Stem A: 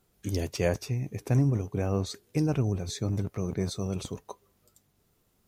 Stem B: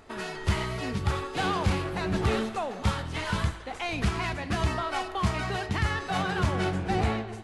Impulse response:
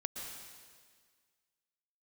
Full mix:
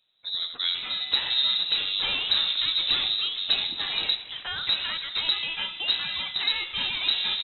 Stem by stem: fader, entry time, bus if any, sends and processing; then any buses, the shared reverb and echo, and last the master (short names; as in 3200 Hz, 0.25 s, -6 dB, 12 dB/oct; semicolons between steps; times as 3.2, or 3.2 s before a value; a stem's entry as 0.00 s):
-2.5 dB, 0.00 s, no send, echo send -7 dB, dry
-0.5 dB, 0.65 s, no send, no echo send, dry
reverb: off
echo: echo 80 ms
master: inverted band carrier 3900 Hz